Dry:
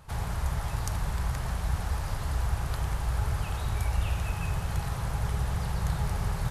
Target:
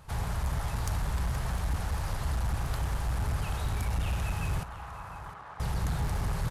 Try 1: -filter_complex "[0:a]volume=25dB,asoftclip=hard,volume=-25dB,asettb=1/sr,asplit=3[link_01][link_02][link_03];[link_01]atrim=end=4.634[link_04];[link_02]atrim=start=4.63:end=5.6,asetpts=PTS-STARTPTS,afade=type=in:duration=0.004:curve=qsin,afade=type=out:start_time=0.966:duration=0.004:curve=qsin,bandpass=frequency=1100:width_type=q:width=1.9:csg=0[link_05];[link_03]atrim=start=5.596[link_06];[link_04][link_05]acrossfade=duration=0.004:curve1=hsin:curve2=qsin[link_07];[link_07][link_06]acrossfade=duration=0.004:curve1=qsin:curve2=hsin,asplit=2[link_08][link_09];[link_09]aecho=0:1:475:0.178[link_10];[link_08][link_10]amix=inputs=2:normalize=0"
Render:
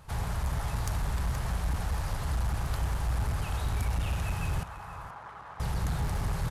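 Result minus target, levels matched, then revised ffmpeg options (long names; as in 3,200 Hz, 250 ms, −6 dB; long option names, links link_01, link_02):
echo 230 ms early
-filter_complex "[0:a]volume=25dB,asoftclip=hard,volume=-25dB,asettb=1/sr,asplit=3[link_01][link_02][link_03];[link_01]atrim=end=4.634[link_04];[link_02]atrim=start=4.63:end=5.6,asetpts=PTS-STARTPTS,afade=type=in:duration=0.004:curve=qsin,afade=type=out:start_time=0.966:duration=0.004:curve=qsin,bandpass=frequency=1100:width_type=q:width=1.9:csg=0[link_05];[link_03]atrim=start=5.596[link_06];[link_04][link_05]acrossfade=duration=0.004:curve1=hsin:curve2=qsin[link_07];[link_07][link_06]acrossfade=duration=0.004:curve1=qsin:curve2=hsin,asplit=2[link_08][link_09];[link_09]aecho=0:1:705:0.178[link_10];[link_08][link_10]amix=inputs=2:normalize=0"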